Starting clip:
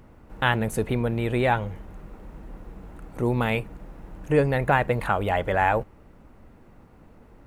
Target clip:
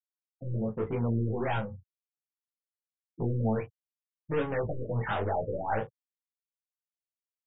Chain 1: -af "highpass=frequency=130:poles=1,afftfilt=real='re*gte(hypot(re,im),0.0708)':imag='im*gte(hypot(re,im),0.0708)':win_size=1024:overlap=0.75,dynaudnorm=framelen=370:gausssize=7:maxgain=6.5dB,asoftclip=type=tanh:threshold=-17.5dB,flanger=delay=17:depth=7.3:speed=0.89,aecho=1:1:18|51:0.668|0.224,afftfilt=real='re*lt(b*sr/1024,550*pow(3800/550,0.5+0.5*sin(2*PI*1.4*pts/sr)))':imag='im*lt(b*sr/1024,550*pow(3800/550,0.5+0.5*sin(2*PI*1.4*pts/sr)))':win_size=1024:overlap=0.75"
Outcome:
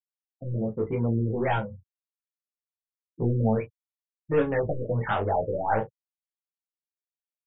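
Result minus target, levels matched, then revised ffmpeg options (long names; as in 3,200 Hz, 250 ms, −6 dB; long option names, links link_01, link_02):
soft clipping: distortion −5 dB
-af "highpass=frequency=130:poles=1,afftfilt=real='re*gte(hypot(re,im),0.0708)':imag='im*gte(hypot(re,im),0.0708)':win_size=1024:overlap=0.75,dynaudnorm=framelen=370:gausssize=7:maxgain=6.5dB,asoftclip=type=tanh:threshold=-25.5dB,flanger=delay=17:depth=7.3:speed=0.89,aecho=1:1:18|51:0.668|0.224,afftfilt=real='re*lt(b*sr/1024,550*pow(3800/550,0.5+0.5*sin(2*PI*1.4*pts/sr)))':imag='im*lt(b*sr/1024,550*pow(3800/550,0.5+0.5*sin(2*PI*1.4*pts/sr)))':win_size=1024:overlap=0.75"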